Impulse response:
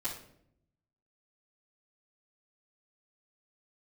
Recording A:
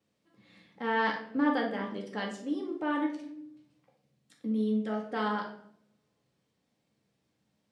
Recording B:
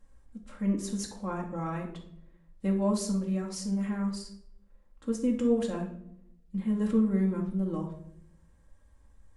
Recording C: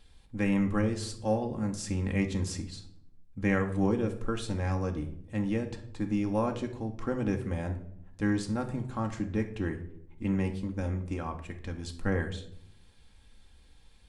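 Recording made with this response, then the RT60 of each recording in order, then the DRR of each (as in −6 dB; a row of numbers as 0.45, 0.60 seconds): A; 0.70, 0.70, 0.70 seconds; −12.5, −2.5, 3.0 decibels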